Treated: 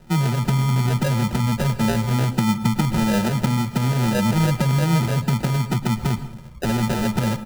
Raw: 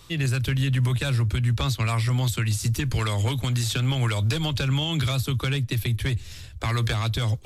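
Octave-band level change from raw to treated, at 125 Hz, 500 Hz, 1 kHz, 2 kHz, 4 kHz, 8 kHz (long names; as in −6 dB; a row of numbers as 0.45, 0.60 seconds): +2.5, +6.5, +8.0, +1.5, −2.5, +1.5 decibels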